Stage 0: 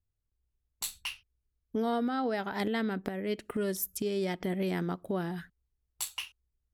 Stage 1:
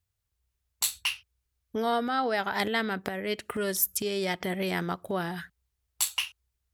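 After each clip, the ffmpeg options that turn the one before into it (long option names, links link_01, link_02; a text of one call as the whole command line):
ffmpeg -i in.wav -af "highpass=69,equalizer=frequency=250:width=0.62:gain=-10.5,volume=8.5dB" out.wav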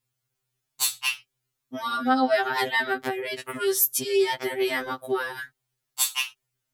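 ffmpeg -i in.wav -af "afftfilt=real='re*2.45*eq(mod(b,6),0)':imag='im*2.45*eq(mod(b,6),0)':win_size=2048:overlap=0.75,volume=6.5dB" out.wav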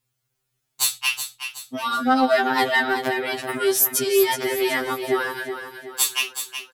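ffmpeg -i in.wav -filter_complex "[0:a]asplit=2[link_01][link_02];[link_02]asoftclip=type=hard:threshold=-18dB,volume=-5dB[link_03];[link_01][link_03]amix=inputs=2:normalize=0,aecho=1:1:372|744|1116|1488|1860:0.355|0.153|0.0656|0.0282|0.0121" out.wav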